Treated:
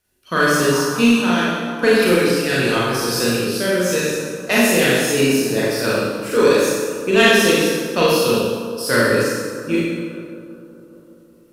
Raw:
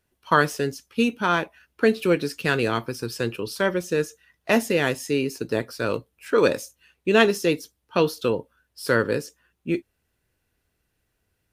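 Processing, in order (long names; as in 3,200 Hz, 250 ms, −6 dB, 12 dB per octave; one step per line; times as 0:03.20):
on a send: bucket-brigade delay 197 ms, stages 2,048, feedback 73%, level −13.5 dB
on the sum: rotating-speaker cabinet horn 0.9 Hz, later 7.5 Hz, at 0:03.63
high-shelf EQ 3,500 Hz +8.5 dB
four-comb reverb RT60 1.3 s, combs from 30 ms, DRR −7 dB
in parallel at −4 dB: gain into a clipping stage and back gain 13 dB
on the sum: mains-hum notches 50/100/150/200/250/300/350/400/450/500 Hz
level −2.5 dB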